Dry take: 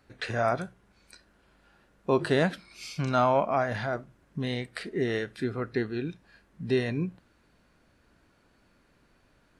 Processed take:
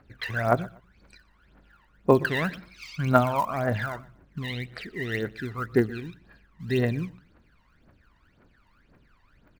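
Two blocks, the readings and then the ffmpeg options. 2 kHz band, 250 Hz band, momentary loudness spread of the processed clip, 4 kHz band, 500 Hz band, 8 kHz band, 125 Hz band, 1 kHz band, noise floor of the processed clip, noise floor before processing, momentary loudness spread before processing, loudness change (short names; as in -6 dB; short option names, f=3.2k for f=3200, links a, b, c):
+3.5 dB, +2.0 dB, 18 LU, 0.0 dB, +1.0 dB, -1.0 dB, +4.0 dB, +1.5 dB, -63 dBFS, -66 dBFS, 15 LU, +2.0 dB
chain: -filter_complex "[0:a]acrusher=bits=6:mode=log:mix=0:aa=0.000001,lowpass=1.8k,aphaser=in_gain=1:out_gain=1:delay=1.1:decay=0.77:speed=1.9:type=triangular,crystalizer=i=7:c=0,asplit=2[a][b];[b]aecho=0:1:121|242:0.0794|0.0207[c];[a][c]amix=inputs=2:normalize=0,volume=-4dB"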